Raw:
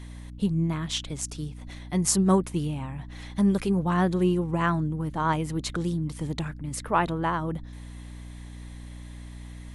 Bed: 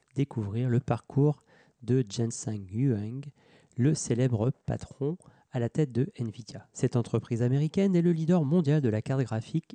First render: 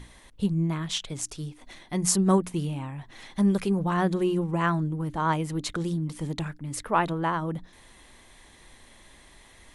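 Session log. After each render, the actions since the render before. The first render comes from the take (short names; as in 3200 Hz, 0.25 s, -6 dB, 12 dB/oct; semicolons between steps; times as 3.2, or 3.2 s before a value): notches 60/120/180/240/300 Hz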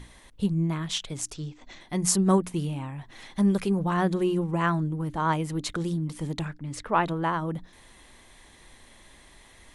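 1.34–1.81 steep low-pass 7800 Hz 96 dB/oct; 6.46–7.07 LPF 6600 Hz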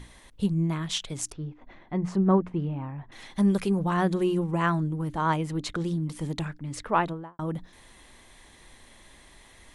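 1.32–3.12 LPF 1600 Hz; 5.36–5.97 high shelf 8600 Hz -10 dB; 6.94–7.39 studio fade out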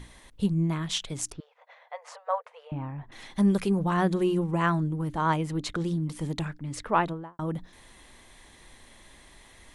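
1.4–2.72 brick-wall FIR high-pass 460 Hz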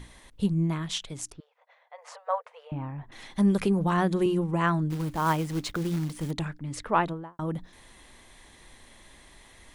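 0.68–1.98 fade out quadratic, to -7.5 dB; 3.61–4.26 three-band squash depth 70%; 4.9–6.31 short-mantissa float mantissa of 2-bit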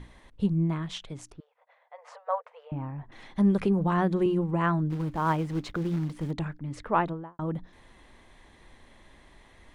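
LPF 1900 Hz 6 dB/oct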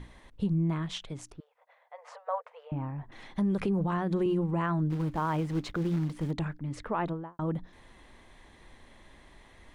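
limiter -21 dBFS, peak gain reduction 9 dB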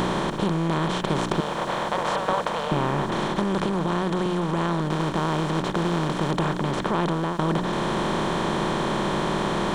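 per-bin compression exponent 0.2; vocal rider within 4 dB 0.5 s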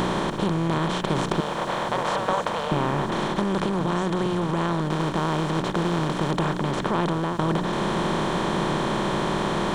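add bed -13.5 dB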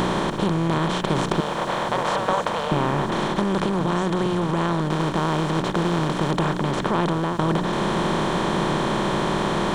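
gain +2 dB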